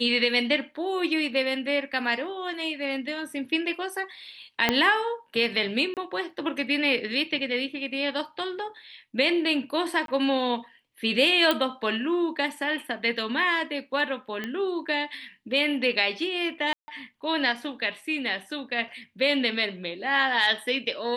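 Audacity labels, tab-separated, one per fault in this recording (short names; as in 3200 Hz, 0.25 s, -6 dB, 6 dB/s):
4.690000	4.690000	pop -6 dBFS
5.940000	5.970000	gap 28 ms
10.060000	10.080000	gap 22 ms
11.510000	11.510000	pop -9 dBFS
14.440000	14.440000	pop -18 dBFS
16.730000	16.880000	gap 0.15 s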